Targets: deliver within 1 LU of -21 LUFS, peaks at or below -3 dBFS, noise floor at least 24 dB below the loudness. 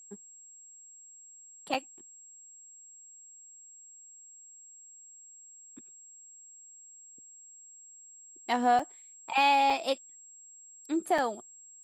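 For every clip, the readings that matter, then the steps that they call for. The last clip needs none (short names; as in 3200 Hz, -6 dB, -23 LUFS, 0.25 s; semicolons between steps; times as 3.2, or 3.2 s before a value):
dropouts 4; longest dropout 4.4 ms; steady tone 7600 Hz; tone level -50 dBFS; loudness -28.5 LUFS; peak -14.5 dBFS; loudness target -21.0 LUFS
-> interpolate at 1.74/8.79/9.7/11.18, 4.4 ms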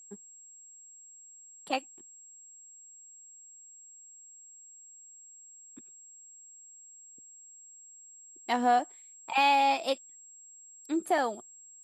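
dropouts 0; steady tone 7600 Hz; tone level -50 dBFS
-> notch 7600 Hz, Q 30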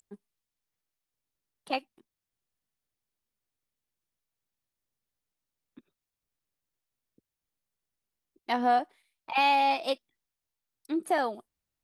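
steady tone none; loudness -28.5 LUFS; peak -14.5 dBFS; loudness target -21.0 LUFS
-> gain +7.5 dB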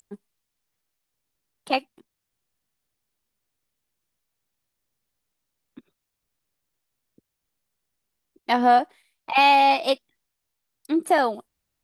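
loudness -21.0 LUFS; peak -7.0 dBFS; noise floor -82 dBFS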